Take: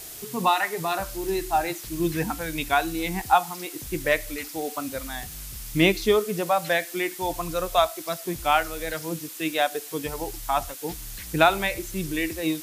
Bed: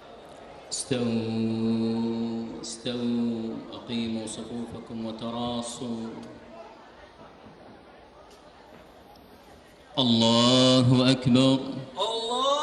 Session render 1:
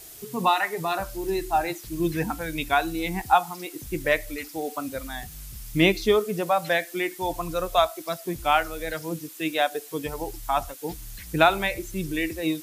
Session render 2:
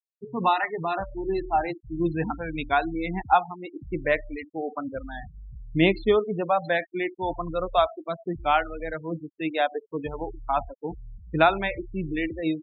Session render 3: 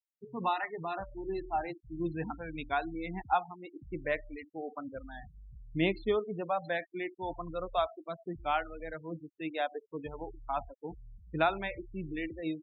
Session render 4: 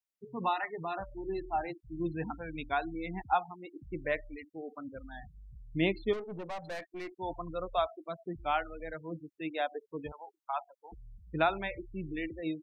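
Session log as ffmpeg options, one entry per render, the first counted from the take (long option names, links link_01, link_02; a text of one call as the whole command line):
ffmpeg -i in.wav -af "afftdn=noise_reduction=6:noise_floor=-40" out.wav
ffmpeg -i in.wav -af "lowpass=frequency=2600:poles=1,afftfilt=real='re*gte(hypot(re,im),0.0316)':imag='im*gte(hypot(re,im),0.0316)':win_size=1024:overlap=0.75" out.wav
ffmpeg -i in.wav -af "volume=-9dB" out.wav
ffmpeg -i in.wav -filter_complex "[0:a]asplit=3[link_01][link_02][link_03];[link_01]afade=type=out:start_time=4.26:duration=0.02[link_04];[link_02]equalizer=frequency=800:width_type=o:width=1:gain=-8.5,afade=type=in:start_time=4.26:duration=0.02,afade=type=out:start_time=5.1:duration=0.02[link_05];[link_03]afade=type=in:start_time=5.1:duration=0.02[link_06];[link_04][link_05][link_06]amix=inputs=3:normalize=0,asettb=1/sr,asplit=3[link_07][link_08][link_09];[link_07]atrim=end=6.134[link_10];[link_08]atrim=start=6.13:end=7.12,asetpts=PTS-STARTPTS,afade=type=in:duration=0.004:curve=qsin,afade=type=out:start_time=0.986:duration=0.004:curve=qsin,aeval=exprs='(tanh(63.1*val(0)+0.35)-tanh(0.35))/63.1':channel_layout=same[link_11];[link_09]atrim=start=7.116[link_12];[link_10][link_11]acrossfade=duration=0.004:curve1=hsin:curve2=qsin[link_13];[link_13][link_12]acrossfade=duration=0.004:curve1=qsin:curve2=hsin,asettb=1/sr,asplit=3[link_14][link_15][link_16];[link_14]atrim=end=10.124[link_17];[link_15]atrim=start=10.12:end=10.92,asetpts=PTS-STARTPTS,afade=type=in:duration=0.004:curve=qsin,afade=type=out:start_time=0.796:duration=0.004:curve=qsin,highpass=frequency=680:width=0.5412,highpass=frequency=680:width=1.3066[link_18];[link_16]atrim=start=10.916[link_19];[link_17][link_18]acrossfade=duration=0.004:curve1=hsin:curve2=qsin[link_20];[link_20][link_19]acrossfade=duration=0.004:curve1=qsin:curve2=hsin" out.wav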